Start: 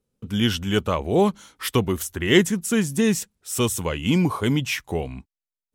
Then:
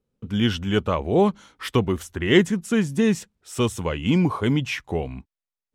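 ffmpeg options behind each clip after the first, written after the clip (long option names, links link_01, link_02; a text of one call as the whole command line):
ffmpeg -i in.wav -af "aemphasis=mode=reproduction:type=50fm" out.wav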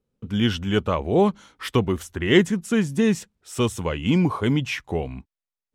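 ffmpeg -i in.wav -af anull out.wav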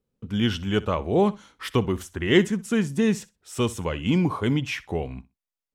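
ffmpeg -i in.wav -af "aecho=1:1:63|126:0.106|0.0169,volume=-2dB" out.wav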